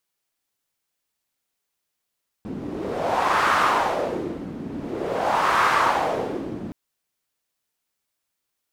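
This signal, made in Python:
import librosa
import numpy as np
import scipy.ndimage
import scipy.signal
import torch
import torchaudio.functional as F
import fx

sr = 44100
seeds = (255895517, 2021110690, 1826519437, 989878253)

y = fx.wind(sr, seeds[0], length_s=4.27, low_hz=240.0, high_hz=1200.0, q=2.5, gusts=2, swing_db=13.5)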